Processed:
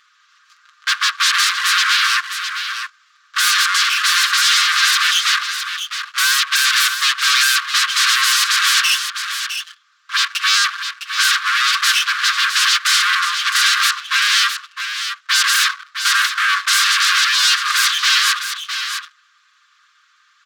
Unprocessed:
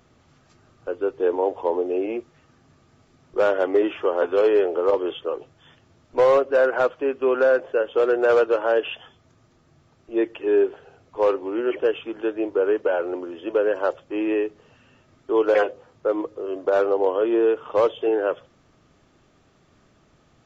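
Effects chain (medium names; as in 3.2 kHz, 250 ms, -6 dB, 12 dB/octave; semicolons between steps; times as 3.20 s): comb filter that takes the minimum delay 5.7 ms; treble shelf 4 kHz -8 dB; in parallel at -3 dB: gain riding 0.5 s; on the sum: waveshaping leveller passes 3; sine folder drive 14 dB, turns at -4 dBFS; rippled Chebyshev high-pass 1.1 kHz, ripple 6 dB; vibrato 13 Hz 12 cents; on a send: delay 659 ms -8.5 dB; on the sum: trim -2 dB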